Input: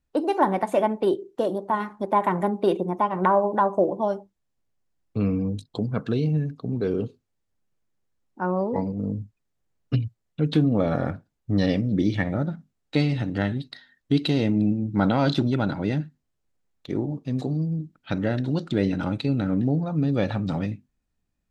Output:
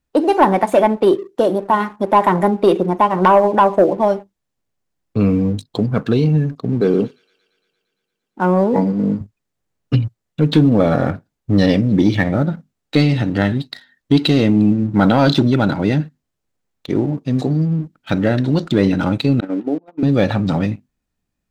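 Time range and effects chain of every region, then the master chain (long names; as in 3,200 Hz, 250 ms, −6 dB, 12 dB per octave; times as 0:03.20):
0:06.81–0:09.21: low shelf with overshoot 120 Hz −11.5 dB, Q 1.5 + delay with a high-pass on its return 115 ms, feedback 75%, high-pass 2,700 Hz, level −10.5 dB
0:19.40–0:20.03: Chebyshev band-pass filter 300–3,000 Hz, order 3 + noise gate −31 dBFS, range −19 dB + parametric band 1,200 Hz −6.5 dB 1.6 octaves
whole clip: low-shelf EQ 74 Hz −6 dB; leveller curve on the samples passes 1; level +6 dB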